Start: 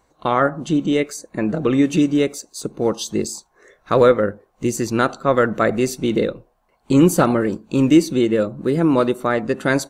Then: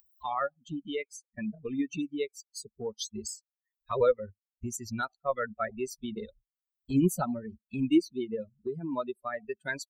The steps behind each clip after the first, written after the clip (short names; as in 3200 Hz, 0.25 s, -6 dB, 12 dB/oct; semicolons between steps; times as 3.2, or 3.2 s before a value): per-bin expansion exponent 3; upward compressor, threshold -22 dBFS; gain -7.5 dB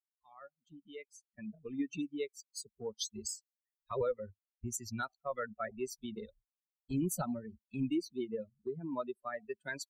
opening faded in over 2.06 s; limiter -23 dBFS, peak gain reduction 9 dB; three-band expander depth 40%; gain -4.5 dB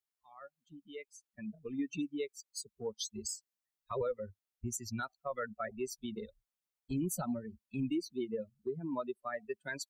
limiter -29 dBFS, peak gain reduction 5.5 dB; gain +1.5 dB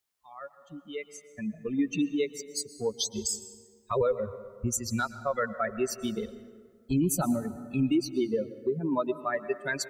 plate-style reverb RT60 1.8 s, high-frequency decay 0.5×, pre-delay 0.105 s, DRR 13.5 dB; gain +9 dB